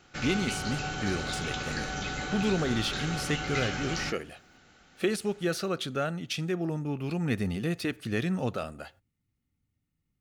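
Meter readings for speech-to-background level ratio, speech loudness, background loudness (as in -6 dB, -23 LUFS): 1.5 dB, -32.0 LUFS, -33.5 LUFS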